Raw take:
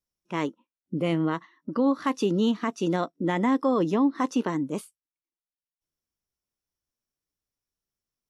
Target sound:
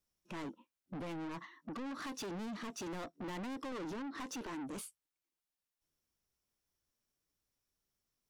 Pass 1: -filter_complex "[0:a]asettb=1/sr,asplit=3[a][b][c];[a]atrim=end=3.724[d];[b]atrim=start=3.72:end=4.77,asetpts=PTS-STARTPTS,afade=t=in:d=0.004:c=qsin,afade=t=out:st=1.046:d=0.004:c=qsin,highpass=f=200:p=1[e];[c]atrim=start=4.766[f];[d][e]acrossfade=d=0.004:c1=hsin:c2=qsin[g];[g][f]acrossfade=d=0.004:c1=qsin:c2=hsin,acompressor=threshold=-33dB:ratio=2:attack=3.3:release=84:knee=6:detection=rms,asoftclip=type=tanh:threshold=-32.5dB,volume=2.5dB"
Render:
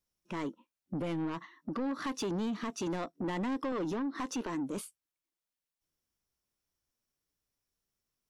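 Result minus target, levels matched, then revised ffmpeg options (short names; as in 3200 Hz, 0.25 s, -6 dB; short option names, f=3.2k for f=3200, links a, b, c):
soft clip: distortion -6 dB
-filter_complex "[0:a]asettb=1/sr,asplit=3[a][b][c];[a]atrim=end=3.724[d];[b]atrim=start=3.72:end=4.77,asetpts=PTS-STARTPTS,afade=t=in:d=0.004:c=qsin,afade=t=out:st=1.046:d=0.004:c=qsin,highpass=f=200:p=1[e];[c]atrim=start=4.766[f];[d][e]acrossfade=d=0.004:c1=hsin:c2=qsin[g];[g][f]acrossfade=d=0.004:c1=qsin:c2=hsin,acompressor=threshold=-33dB:ratio=2:attack=3.3:release=84:knee=6:detection=rms,asoftclip=type=tanh:threshold=-43dB,volume=2.5dB"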